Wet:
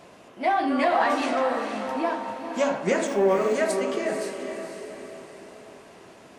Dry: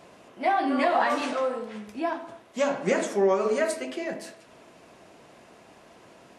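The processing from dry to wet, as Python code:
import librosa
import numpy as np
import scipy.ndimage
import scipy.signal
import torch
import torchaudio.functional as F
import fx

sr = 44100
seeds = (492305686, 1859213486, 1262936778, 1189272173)

p1 = 10.0 ** (-27.5 / 20.0) * np.tanh(x / 10.0 ** (-27.5 / 20.0))
p2 = x + (p1 * 10.0 ** (-11.5 / 20.0))
p3 = fx.dmg_tone(p2, sr, hz=920.0, level_db=-33.0, at=(1.87, 2.32), fade=0.02)
p4 = fx.echo_diffused(p3, sr, ms=495, feedback_pct=46, wet_db=-7)
y = fx.resample_linear(p4, sr, factor=3, at=(3.07, 3.55))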